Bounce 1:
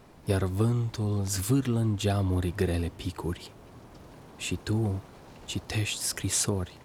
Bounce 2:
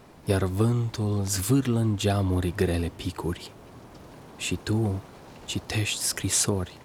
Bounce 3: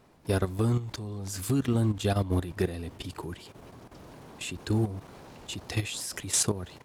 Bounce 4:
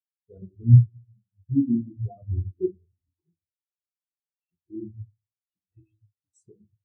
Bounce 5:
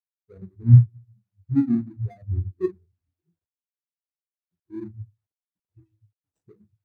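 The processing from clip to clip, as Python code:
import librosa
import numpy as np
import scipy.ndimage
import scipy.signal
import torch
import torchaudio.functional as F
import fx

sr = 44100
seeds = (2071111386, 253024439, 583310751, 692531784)

y1 = fx.low_shelf(x, sr, hz=80.0, db=-5.0)
y1 = y1 * 10.0 ** (3.5 / 20.0)
y2 = fx.level_steps(y1, sr, step_db=12)
y3 = fx.room_shoebox(y2, sr, seeds[0], volume_m3=200.0, walls='mixed', distance_m=0.91)
y3 = fx.spectral_expand(y3, sr, expansion=4.0)
y3 = y3 * 10.0 ** (6.5 / 20.0)
y4 = scipy.signal.medfilt(y3, 41)
y4 = y4 * 10.0 ** (1.5 / 20.0)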